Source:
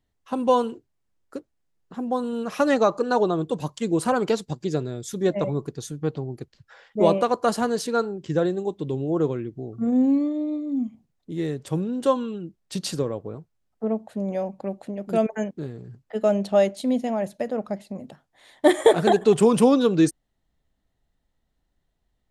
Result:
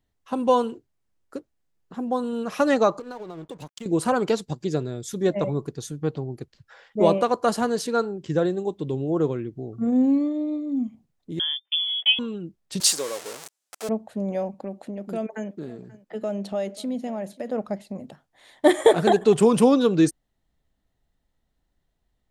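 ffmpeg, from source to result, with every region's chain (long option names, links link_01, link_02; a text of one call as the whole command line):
ffmpeg -i in.wav -filter_complex "[0:a]asettb=1/sr,asplit=3[link_01][link_02][link_03];[link_01]atrim=end=2.994[link_04];[link_02]atrim=start=2.99:end=3.86,asetpts=PTS-STARTPTS,afade=type=in:duration=0.004:curve=qsin,afade=type=out:start_time=0.866:duration=0.004:curve=qsin,acompressor=threshold=-32dB:ratio=8:attack=3.2:release=140:knee=1:detection=peak,aeval=exprs='sgn(val(0))*max(abs(val(0))-0.00355,0)':channel_layout=same[link_05];[link_03]atrim=start=3.856[link_06];[link_04][link_05]acrossfade=duration=0.004:curve1=hsin:curve2=qsin[link_07];[link_07][link_06]acrossfade=duration=0.004:curve1=qsin:curve2=hsin,asettb=1/sr,asplit=3[link_08][link_09][link_10];[link_08]atrim=end=11.394[link_11];[link_09]atrim=start=11.39:end=12.19,asetpts=PTS-STARTPTS,afade=type=in:duration=0.004:curve=qsin,afade=type=out:start_time=0.796:duration=0.004:curve=qsin,agate=range=-36dB:threshold=-33dB:ratio=16:release=100:detection=peak,lowpass=frequency=3100:width_type=q:width=0.5098,lowpass=frequency=3100:width_type=q:width=0.6013,lowpass=frequency=3100:width_type=q:width=0.9,lowpass=frequency=3100:width_type=q:width=2.563,afreqshift=-3600,highpass=490[link_12];[link_10]atrim=start=12.186[link_13];[link_11][link_12]acrossfade=duration=0.004:curve1=hsin:curve2=qsin[link_14];[link_14][link_13]acrossfade=duration=0.004:curve1=qsin:curve2=hsin,asettb=1/sr,asplit=3[link_15][link_16][link_17];[link_15]atrim=end=12.804[link_18];[link_16]atrim=start=12.8:end=13.89,asetpts=PTS-STARTPTS,afade=type=in:duration=0.004:curve=qsin,afade=type=out:start_time=1.086:duration=0.004:curve=qsin,aeval=exprs='val(0)+0.5*0.0251*sgn(val(0))':channel_layout=same,highpass=550,equalizer=frequency=8100:width_type=o:width=2:gain=13[link_19];[link_17]atrim=start=13.886[link_20];[link_18][link_19]acrossfade=duration=0.004:curve1=hsin:curve2=qsin[link_21];[link_21][link_20]acrossfade=duration=0.004:curve1=qsin:curve2=hsin,asettb=1/sr,asplit=3[link_22][link_23][link_24];[link_22]atrim=end=14.544[link_25];[link_23]atrim=start=14.54:end=17.51,asetpts=PTS-STARTPTS,afade=type=in:duration=0.004:curve=qsin,afade=type=out:start_time=2.966:duration=0.004:curve=qsin,lowshelf=frequency=150:width_type=q:width=1.5:gain=-8,acompressor=threshold=-31dB:ratio=2:attack=3.2:release=140:knee=1:detection=peak,aecho=1:1:535:0.0891,atrim=end_sample=130977[link_26];[link_24]atrim=start=17.506[link_27];[link_25][link_26]acrossfade=duration=0.004:curve1=hsin:curve2=qsin[link_28];[link_28][link_27]acrossfade=duration=0.004:curve1=qsin:curve2=hsin" out.wav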